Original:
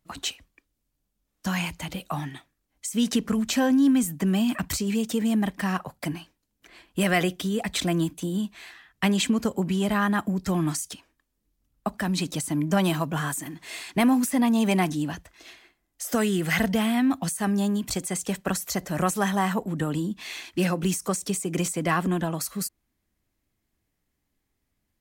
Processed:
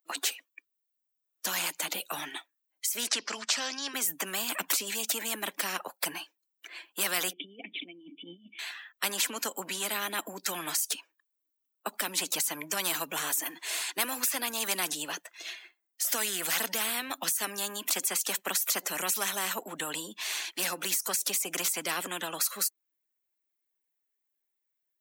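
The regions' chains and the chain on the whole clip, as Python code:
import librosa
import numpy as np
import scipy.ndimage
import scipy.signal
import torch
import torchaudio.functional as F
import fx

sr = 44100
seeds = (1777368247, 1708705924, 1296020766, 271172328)

y = fx.chain(x, sr, fx.lowpass_res(hz=5100.0, q=4.6),
    fx.low_shelf(hz=440.0, db=-11.0), at=(3.07, 3.94))
y = fx.chain(y, sr, fx.law_mismatch(coded='mu'),
    fx.formant_cascade(vowel='i'),
    fx.over_compress(threshold_db=-37.0, ratio=-0.5), at=(7.33, 8.59))
y = fx.bin_expand(y, sr, power=1.5)
y = scipy.signal.sosfilt(scipy.signal.bessel(8, 530.0, 'highpass', norm='mag', fs=sr, output='sos'), y)
y = fx.spectral_comp(y, sr, ratio=4.0)
y = y * librosa.db_to_amplitude(-4.0)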